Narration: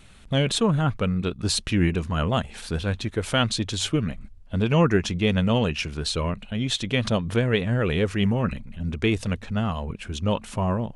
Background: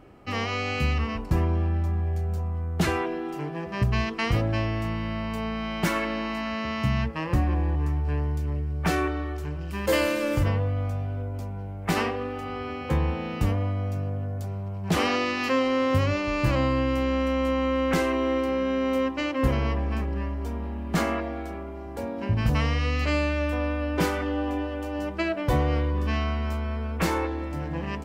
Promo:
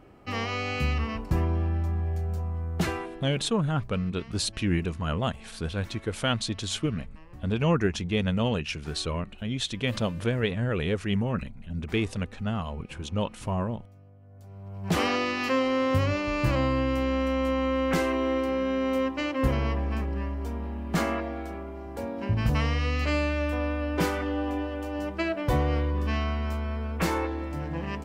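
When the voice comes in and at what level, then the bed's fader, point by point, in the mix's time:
2.90 s, -4.5 dB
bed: 2.78 s -2 dB
3.71 s -23.5 dB
14.20 s -23.5 dB
14.88 s -1.5 dB

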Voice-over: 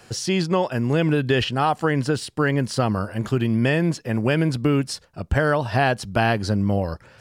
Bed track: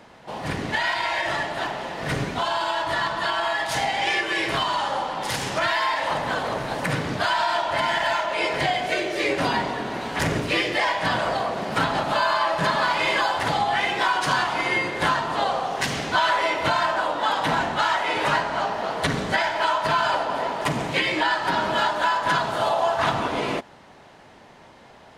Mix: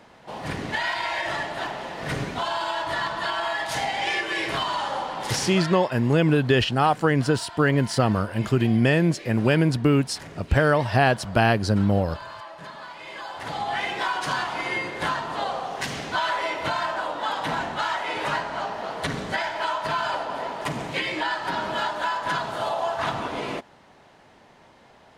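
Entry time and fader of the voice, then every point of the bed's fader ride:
5.20 s, +0.5 dB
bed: 5.44 s -2.5 dB
5.87 s -18 dB
13.04 s -18 dB
13.71 s -4.5 dB

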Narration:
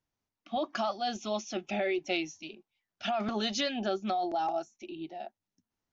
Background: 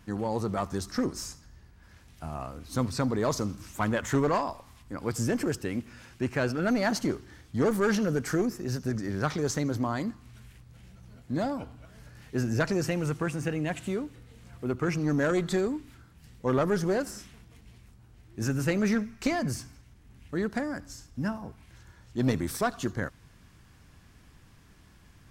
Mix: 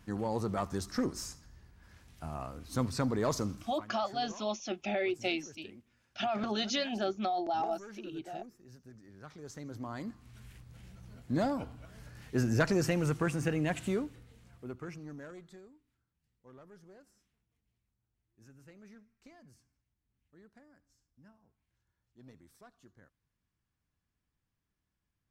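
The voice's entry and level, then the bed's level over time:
3.15 s, -1.5 dB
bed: 3.57 s -3.5 dB
3.86 s -23.5 dB
9.14 s -23.5 dB
10.51 s -1 dB
13.98 s -1 dB
15.78 s -29.5 dB

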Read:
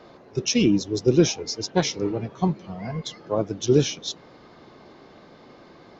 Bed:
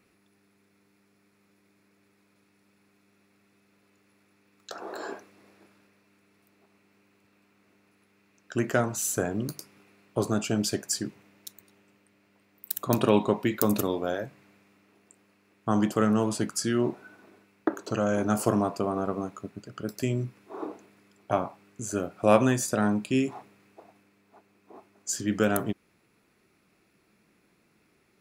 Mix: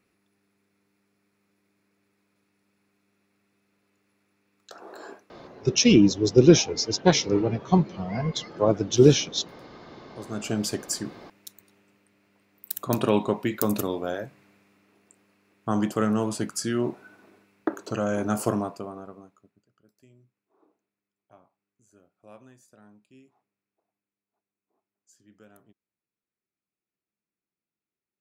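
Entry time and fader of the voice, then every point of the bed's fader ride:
5.30 s, +3.0 dB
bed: 5.10 s -5.5 dB
5.97 s -26.5 dB
9.93 s -26.5 dB
10.47 s -0.5 dB
18.50 s -0.5 dB
19.83 s -29.5 dB

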